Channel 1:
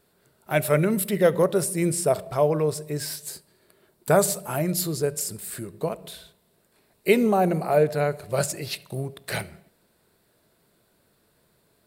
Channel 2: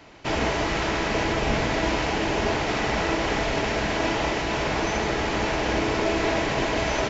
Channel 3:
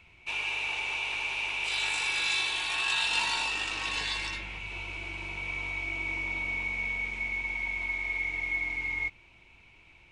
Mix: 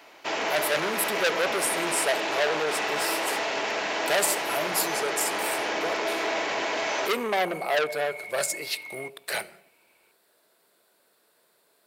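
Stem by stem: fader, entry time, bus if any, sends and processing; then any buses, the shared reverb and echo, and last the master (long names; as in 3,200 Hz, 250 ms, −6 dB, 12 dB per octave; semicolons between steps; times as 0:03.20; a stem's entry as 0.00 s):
+1.5 dB, 0.00 s, no send, no processing
−0.5 dB, 0.00 s, no send, no processing
−5.5 dB, 0.00 s, no send, spectral tilt −2.5 dB per octave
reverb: not used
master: high-pass filter 460 Hz 12 dB per octave; saturating transformer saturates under 4,000 Hz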